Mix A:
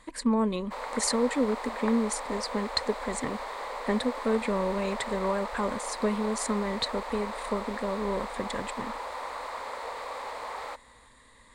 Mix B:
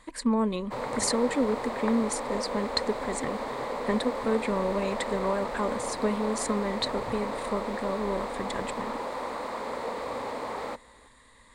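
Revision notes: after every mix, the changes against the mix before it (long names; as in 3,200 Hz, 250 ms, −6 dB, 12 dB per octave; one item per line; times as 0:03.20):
background: remove high-pass filter 710 Hz 12 dB per octave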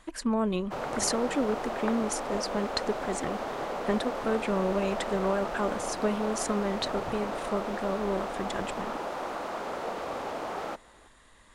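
master: remove EQ curve with evenly spaced ripples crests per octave 0.98, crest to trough 8 dB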